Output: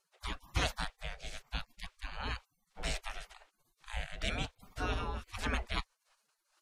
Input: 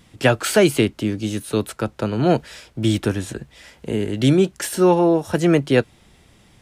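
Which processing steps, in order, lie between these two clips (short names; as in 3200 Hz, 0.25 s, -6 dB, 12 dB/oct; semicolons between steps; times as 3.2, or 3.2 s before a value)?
rotary speaker horn 1 Hz, later 5 Hz, at 4.34; spectral gate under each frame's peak -30 dB weak; RIAA curve playback; gain +4.5 dB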